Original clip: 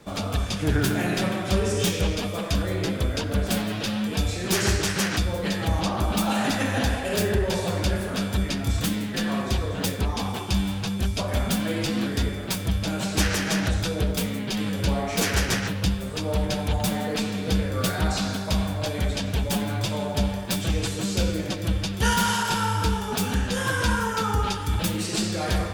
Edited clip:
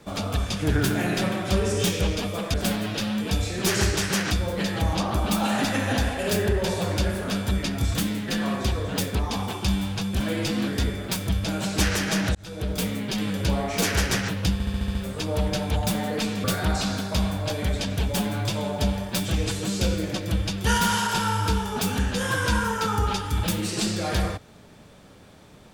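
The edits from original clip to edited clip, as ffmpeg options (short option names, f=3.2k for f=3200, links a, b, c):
-filter_complex "[0:a]asplit=11[a][b][c][d][e][f][g][h][i][j][k];[a]atrim=end=2.542[l];[b]atrim=start=3.398:end=11.062[m];[c]atrim=start=11.588:end=13.74,asetpts=PTS-STARTPTS,afade=t=out:st=2.148:d=0.004:c=hsin[n];[d]atrim=start=13.74:end=15.992,asetpts=PTS-STARTPTS,afade=t=in:d=0.49[o];[e]atrim=start=15.918:end=15.992[p];[f]atrim=start=15.918:end=15.992[q];[g]atrim=start=15.918:end=15.992[r];[h]atrim=start=15.918:end=15.992[s];[i]atrim=start=15.918:end=15.992[t];[j]atrim=start=15.918:end=17.412[u];[k]atrim=start=17.798[v];[l][m]acrossfade=d=0.004:c1=hsin:c2=hsin[w];[n][o]concat=n=2:v=0:a=1[x];[w][x]acrossfade=d=0.004:c1=hsin:c2=hsin[y];[y][p]acrossfade=d=0.004:c1=hsin:c2=hsin[z];[z][q]acrossfade=d=0.004:c1=hsin:c2=hsin[aa];[aa][r]acrossfade=d=0.004:c1=hsin:c2=hsin[ab];[ab][s]acrossfade=d=0.004:c1=hsin:c2=hsin[ac];[ac][t]acrossfade=d=0.004:c1=hsin:c2=hsin[ad];[ad][u]acrossfade=d=0.004:c1=hsin:c2=hsin[ae];[ae][v]acrossfade=d=0.004:c1=hsin:c2=hsin"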